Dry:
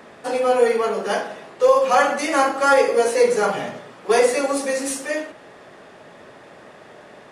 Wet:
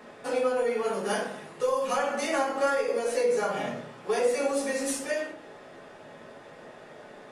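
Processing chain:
0:00.85–0:01.97: graphic EQ with 15 bands 160 Hz +4 dB, 630 Hz −4 dB, 10,000 Hz +9 dB
downward compressor 5 to 1, threshold −20 dBFS, peak gain reduction 9 dB
convolution reverb RT60 0.30 s, pre-delay 5 ms, DRR 0 dB
level −7 dB

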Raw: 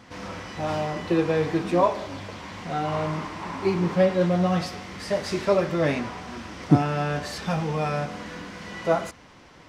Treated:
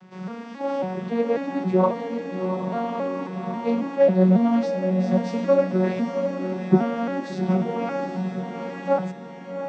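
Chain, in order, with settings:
vocoder with an arpeggio as carrier major triad, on F#3, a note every 272 ms
feedback delay with all-pass diffusion 776 ms, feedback 40%, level −6.5 dB
level +2.5 dB

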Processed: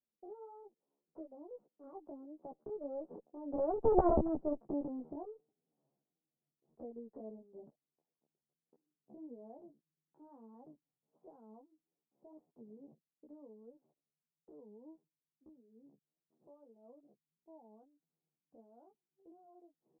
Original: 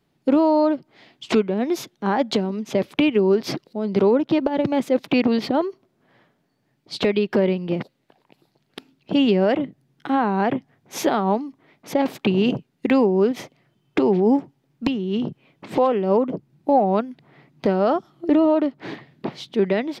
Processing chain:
source passing by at 0:04.05, 36 m/s, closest 2.1 metres
harmonic generator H 2 −34 dB, 4 −26 dB, 5 −23 dB, 6 −7 dB, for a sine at −11 dBFS
inverse Chebyshev low-pass filter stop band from 2,100 Hz, stop band 60 dB
in parallel at −1 dB: downward compressor, threshold −48 dBFS, peak gain reduction 27 dB
on the sum: chorus effect 1.6 Hz, delay 15.5 ms, depth 2.5 ms
pitch shifter +4 semitones

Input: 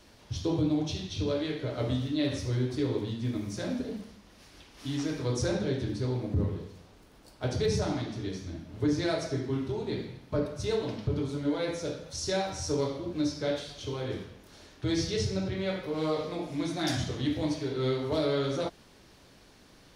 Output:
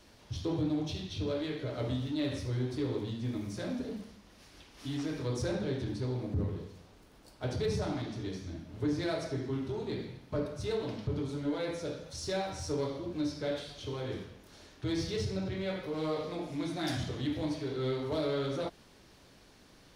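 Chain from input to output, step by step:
dynamic equaliser 6,300 Hz, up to −5 dB, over −52 dBFS, Q 1.8
in parallel at −6.5 dB: gain into a clipping stage and back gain 34 dB
on the sum: level −5.5 dB

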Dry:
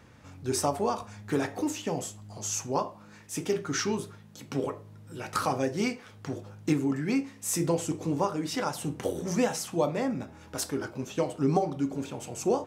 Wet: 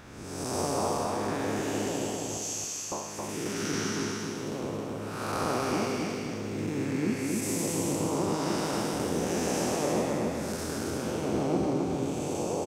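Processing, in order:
spectrum smeared in time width 383 ms
0:02.37–0:02.92: Butterworth high-pass 1,500 Hz 36 dB per octave
harmonic and percussive parts rebalanced harmonic −14 dB
repeating echo 269 ms, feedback 38%, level −3 dB
in parallel at −2.5 dB: downward compressor, threshold −53 dBFS, peak gain reduction 19 dB
on the sum: level +9 dB

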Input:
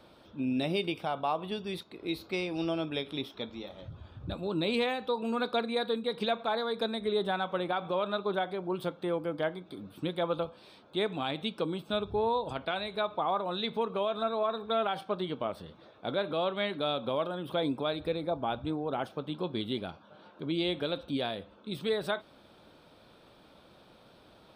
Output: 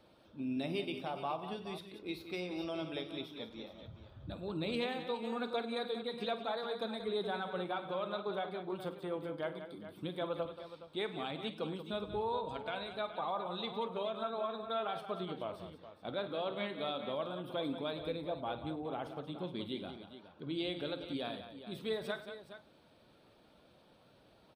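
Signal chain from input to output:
spectral magnitudes quantised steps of 15 dB
multi-tap delay 50/101/182/419 ms −13.5/−17/−10.5/−12.5 dB
level −7 dB

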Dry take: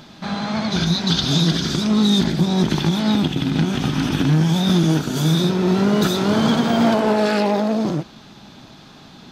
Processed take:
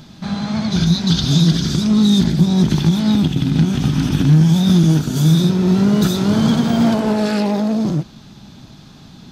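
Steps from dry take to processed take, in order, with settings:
bass and treble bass +11 dB, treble +6 dB
level −3.5 dB

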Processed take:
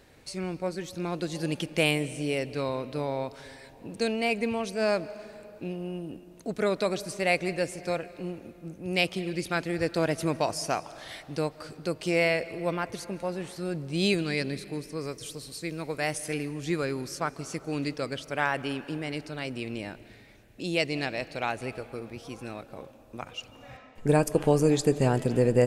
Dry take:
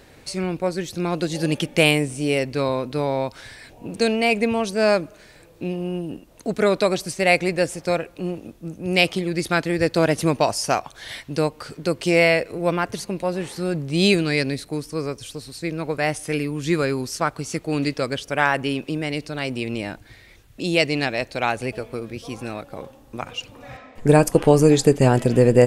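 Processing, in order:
0:15.01–0:16.34: parametric band 11,000 Hz +7 dB 2.6 octaves
on a send: convolution reverb RT60 2.8 s, pre-delay 115 ms, DRR 16.5 dB
on the sum: level −8 dB

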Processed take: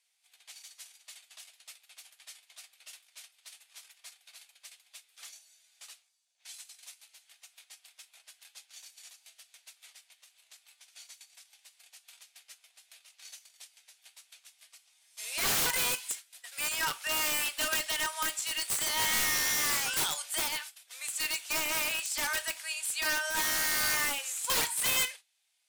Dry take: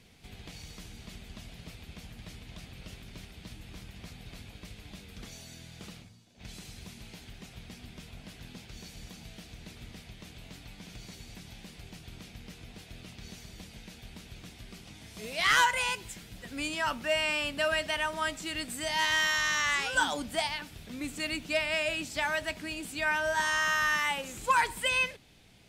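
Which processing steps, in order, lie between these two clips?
noise gate −44 dBFS, range −18 dB
Bessel high-pass filter 1,100 Hz, order 8
parametric band 9,500 Hz +12 dB 1.5 octaves
wrap-around overflow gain 23 dB
tape wow and flutter 16 cents
reverb whose tail is shaped and stops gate 80 ms falling, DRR 11.5 dB

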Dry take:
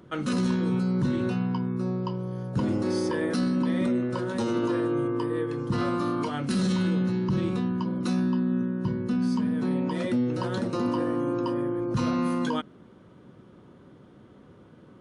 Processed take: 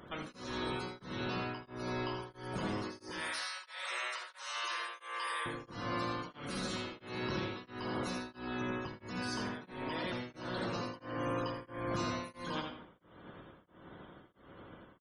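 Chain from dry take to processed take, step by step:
compressing power law on the bin magnitudes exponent 0.38
0:03.12–0:05.46: high-pass filter 980 Hz 12 dB per octave
downward compressor 6 to 1, threshold −28 dBFS, peak gain reduction 7.5 dB
soft clipping −31.5 dBFS, distortion −11 dB
spectral peaks only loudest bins 64
single-tap delay 84 ms −7 dB
convolution reverb RT60 0.55 s, pre-delay 68 ms, DRR 7 dB
tremolo along a rectified sine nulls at 1.5 Hz

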